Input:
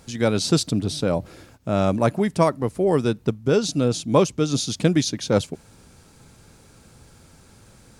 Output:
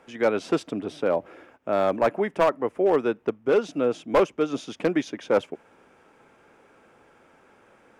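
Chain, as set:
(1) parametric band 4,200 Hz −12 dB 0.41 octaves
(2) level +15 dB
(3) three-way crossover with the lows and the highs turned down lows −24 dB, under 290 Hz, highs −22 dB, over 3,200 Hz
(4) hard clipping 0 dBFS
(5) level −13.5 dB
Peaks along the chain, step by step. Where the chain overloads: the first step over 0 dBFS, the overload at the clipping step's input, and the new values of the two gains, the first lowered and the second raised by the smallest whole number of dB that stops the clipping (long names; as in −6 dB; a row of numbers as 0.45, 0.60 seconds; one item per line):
−4.5, +10.5, +9.5, 0.0, −13.5 dBFS
step 2, 9.5 dB
step 2 +5 dB, step 5 −3.5 dB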